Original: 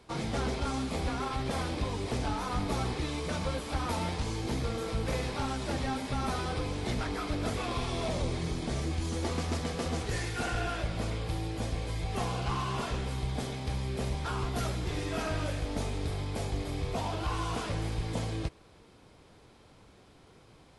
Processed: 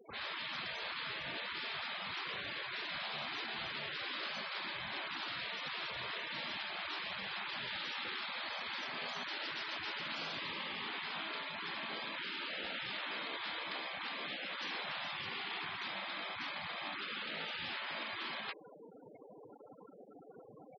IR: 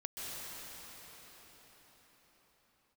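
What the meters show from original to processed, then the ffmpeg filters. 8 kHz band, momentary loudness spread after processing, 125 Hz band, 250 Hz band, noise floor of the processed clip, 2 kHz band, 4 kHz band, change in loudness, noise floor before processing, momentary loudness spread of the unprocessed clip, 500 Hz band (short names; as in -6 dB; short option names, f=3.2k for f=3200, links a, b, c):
under -20 dB, 3 LU, -27.0 dB, -18.0 dB, -57 dBFS, +2.0 dB, +1.5 dB, -6.0 dB, -58 dBFS, 2 LU, -13.5 dB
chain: -filter_complex "[0:a]acrossover=split=580[a][b];[a]asoftclip=type=tanh:threshold=-30.5dB[c];[b]highshelf=f=4.4k:g=-8.5[d];[c][d]amix=inputs=2:normalize=0,acrossover=split=1000[e][f];[f]adelay=40[g];[e][g]amix=inputs=2:normalize=0,asplit=2[h][i];[i]highpass=f=720:p=1,volume=20dB,asoftclip=type=tanh:threshold=-23dB[j];[h][j]amix=inputs=2:normalize=0,lowpass=f=6.6k:p=1,volume=-6dB,acrossover=split=5000[k][l];[l]acompressor=threshold=-58dB:ratio=4:attack=1:release=60[m];[k][m]amix=inputs=2:normalize=0,bandreject=f=360:w=12,afftfilt=real='re*lt(hypot(re,im),0.0447)':imag='im*lt(hypot(re,im),0.0447)':win_size=1024:overlap=0.75,highpass=93,afftfilt=real='re*gte(hypot(re,im),0.01)':imag='im*gte(hypot(re,im),0.01)':win_size=1024:overlap=0.75,areverse,acompressor=mode=upward:threshold=-48dB:ratio=2.5,areverse,volume=-2dB"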